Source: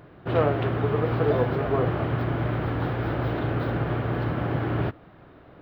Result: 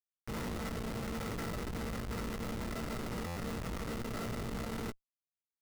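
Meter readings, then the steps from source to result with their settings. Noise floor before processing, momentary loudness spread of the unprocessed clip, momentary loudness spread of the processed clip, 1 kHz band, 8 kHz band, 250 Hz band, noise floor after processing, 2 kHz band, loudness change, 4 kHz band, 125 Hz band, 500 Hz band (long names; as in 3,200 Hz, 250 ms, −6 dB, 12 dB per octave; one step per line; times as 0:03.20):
−50 dBFS, 4 LU, 2 LU, −13.5 dB, can't be measured, −11.0 dB, below −85 dBFS, −11.0 dB, −13.5 dB, −4.0 dB, −16.5 dB, −17.0 dB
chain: transistor ladder low-pass 1,700 Hz, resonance 90%
parametric band 430 Hz −8.5 dB 2.9 octaves
phaser with its sweep stopped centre 1,200 Hz, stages 6
flanger 1.4 Hz, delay 6.3 ms, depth 1.3 ms, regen +52%
ring modulation 340 Hz
comparator with hysteresis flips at −43.5 dBFS
double-tracking delay 17 ms −8.5 dB
buffer that repeats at 0:03.26, samples 512, times 8
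level +10 dB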